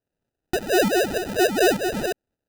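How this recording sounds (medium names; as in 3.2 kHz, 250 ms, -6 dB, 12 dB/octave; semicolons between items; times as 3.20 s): phasing stages 2, 1.4 Hz, lowest notch 670–1600 Hz; aliases and images of a low sample rate 1.1 kHz, jitter 0%; tremolo saw up 3.4 Hz, depth 65%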